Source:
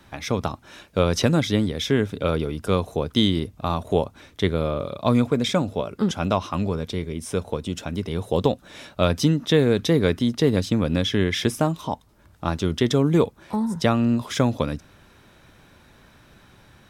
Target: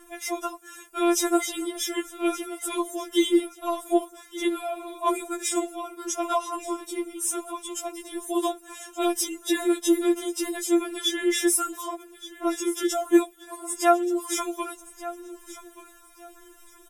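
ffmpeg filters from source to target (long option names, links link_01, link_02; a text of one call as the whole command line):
ffmpeg -i in.wav -af "highshelf=frequency=6100:width_type=q:width=1.5:gain=12.5,bandreject=frequency=4300:width=5.1,aphaser=in_gain=1:out_gain=1:delay=3.8:decay=0.34:speed=0.59:type=sinusoidal,aecho=1:1:1177|2354:0.158|0.038,afftfilt=real='re*4*eq(mod(b,16),0)':imag='im*4*eq(mod(b,16),0)':win_size=2048:overlap=0.75" out.wav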